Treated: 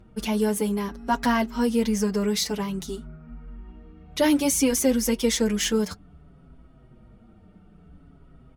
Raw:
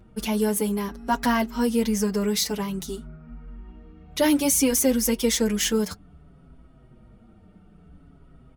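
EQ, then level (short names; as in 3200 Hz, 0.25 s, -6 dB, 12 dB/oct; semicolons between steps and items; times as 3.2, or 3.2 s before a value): high shelf 12000 Hz -10.5 dB; 0.0 dB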